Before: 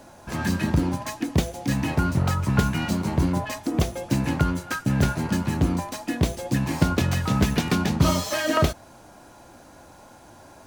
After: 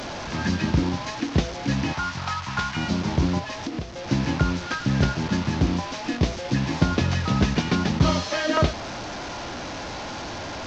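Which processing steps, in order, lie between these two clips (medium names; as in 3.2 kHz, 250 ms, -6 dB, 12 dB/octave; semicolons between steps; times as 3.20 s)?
one-bit delta coder 32 kbps, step -27 dBFS; 1.93–2.77 s: resonant low shelf 670 Hz -11.5 dB, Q 1.5; 3.38–4.08 s: compression 5:1, threshold -28 dBFS, peak gain reduction 11.5 dB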